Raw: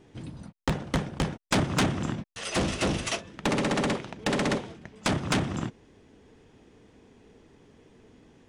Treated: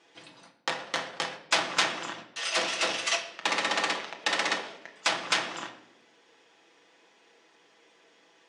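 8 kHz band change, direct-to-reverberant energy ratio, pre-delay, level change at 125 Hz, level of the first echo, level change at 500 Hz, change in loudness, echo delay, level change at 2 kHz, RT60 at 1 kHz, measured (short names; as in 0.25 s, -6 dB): +2.0 dB, 2.0 dB, 6 ms, -23.0 dB, none, -4.5 dB, 0.0 dB, none, +4.5 dB, 0.75 s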